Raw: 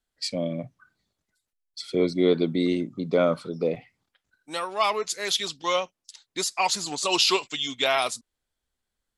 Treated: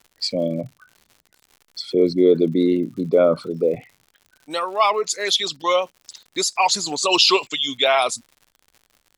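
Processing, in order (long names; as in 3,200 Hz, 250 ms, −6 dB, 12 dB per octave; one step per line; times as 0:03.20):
spectral envelope exaggerated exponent 1.5
surface crackle 120 per second −44 dBFS
level +6 dB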